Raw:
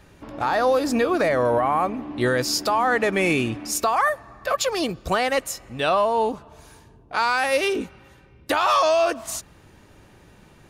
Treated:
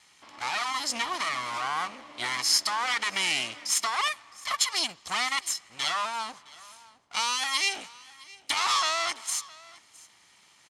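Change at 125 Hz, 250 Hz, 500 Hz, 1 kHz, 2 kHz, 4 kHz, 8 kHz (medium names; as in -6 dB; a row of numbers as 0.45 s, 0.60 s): -21.5 dB, -20.5 dB, -22.5 dB, -8.0 dB, -4.5 dB, +3.0 dB, +2.0 dB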